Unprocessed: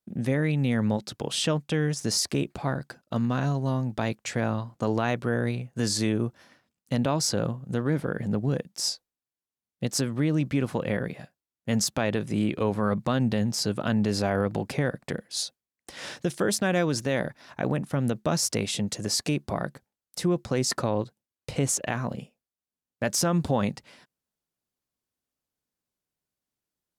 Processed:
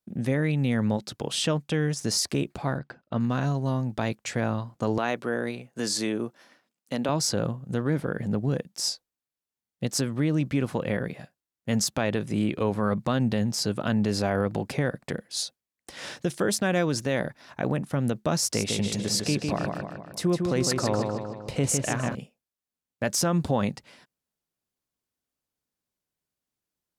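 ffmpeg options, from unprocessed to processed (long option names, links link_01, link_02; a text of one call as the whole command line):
ffmpeg -i in.wav -filter_complex "[0:a]asplit=3[link_01][link_02][link_03];[link_01]afade=type=out:start_time=2.78:duration=0.02[link_04];[link_02]lowpass=3000,afade=type=in:start_time=2.78:duration=0.02,afade=type=out:start_time=3.19:duration=0.02[link_05];[link_03]afade=type=in:start_time=3.19:duration=0.02[link_06];[link_04][link_05][link_06]amix=inputs=3:normalize=0,asettb=1/sr,asplit=3[link_07][link_08][link_09];[link_07]atrim=end=4.984[link_10];[link_08]atrim=start=4.98:end=7.09,asetpts=PTS-STARTPTS,afade=type=in:duration=0.004:curve=qsin,afade=type=out:start_time=2.106:duration=0.004:curve=qsin,highpass=240[link_11];[link_09]atrim=start=7.086[link_12];[link_10][link_11]acrossfade=duration=0.004:curve1=hsin:curve2=qsin[link_13];[link_13][link_12]acrossfade=duration=0.004:curve1=qsin:curve2=hsin,asettb=1/sr,asplit=3[link_14][link_15][link_16];[link_14]atrim=end=18.384[link_17];[link_15]atrim=start=18.38:end=22.15,asetpts=PTS-STARTPTS,afade=type=in:duration=0.004:curve=qsin,afade=type=out:start_time=3.766:duration=0.004:curve=qsin,asplit=2[link_18][link_19];[link_19]adelay=155,lowpass=frequency=4900:poles=1,volume=-4dB,asplit=2[link_20][link_21];[link_21]adelay=155,lowpass=frequency=4900:poles=1,volume=0.54,asplit=2[link_22][link_23];[link_23]adelay=155,lowpass=frequency=4900:poles=1,volume=0.54,asplit=2[link_24][link_25];[link_25]adelay=155,lowpass=frequency=4900:poles=1,volume=0.54,asplit=2[link_26][link_27];[link_27]adelay=155,lowpass=frequency=4900:poles=1,volume=0.54,asplit=2[link_28][link_29];[link_29]adelay=155,lowpass=frequency=4900:poles=1,volume=0.54,asplit=2[link_30][link_31];[link_31]adelay=155,lowpass=frequency=4900:poles=1,volume=0.54[link_32];[link_18][link_20][link_22][link_24][link_26][link_28][link_30][link_32]amix=inputs=8:normalize=0,atrim=end_sample=166257[link_33];[link_16]atrim=start=22.146[link_34];[link_17][link_33]acrossfade=duration=0.004:curve1=hsin:curve2=qsin[link_35];[link_35][link_34]acrossfade=duration=0.004:curve1=qsin:curve2=hsin" out.wav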